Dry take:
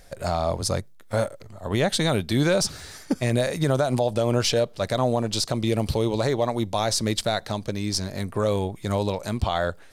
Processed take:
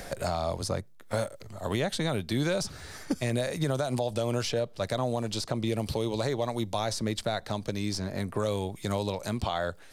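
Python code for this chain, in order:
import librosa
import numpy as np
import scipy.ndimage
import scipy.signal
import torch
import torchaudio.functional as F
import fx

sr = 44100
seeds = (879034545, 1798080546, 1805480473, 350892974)

y = fx.band_squash(x, sr, depth_pct=70)
y = y * 10.0 ** (-6.5 / 20.0)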